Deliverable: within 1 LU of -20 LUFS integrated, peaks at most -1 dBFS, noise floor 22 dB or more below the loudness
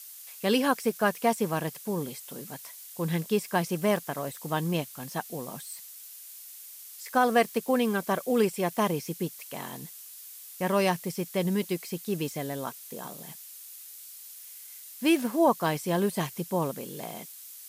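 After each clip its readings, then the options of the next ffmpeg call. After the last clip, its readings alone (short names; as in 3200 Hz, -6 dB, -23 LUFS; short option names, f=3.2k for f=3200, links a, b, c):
noise floor -46 dBFS; noise floor target -51 dBFS; loudness -29.0 LUFS; peak -11.5 dBFS; loudness target -20.0 LUFS
-> -af "afftdn=nr=6:nf=-46"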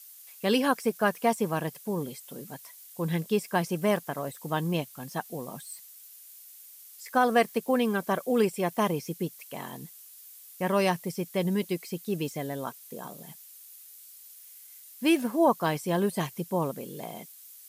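noise floor -50 dBFS; noise floor target -51 dBFS
-> -af "afftdn=nr=6:nf=-50"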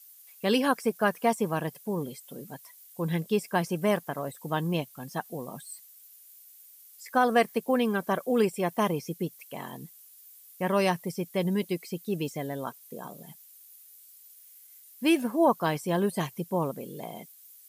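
noise floor -54 dBFS; loudness -29.0 LUFS; peak -11.5 dBFS; loudness target -20.0 LUFS
-> -af "volume=9dB"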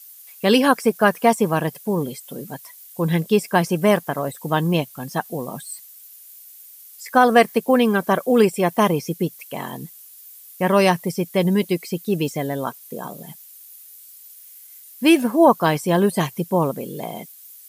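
loudness -20.0 LUFS; peak -2.5 dBFS; noise floor -45 dBFS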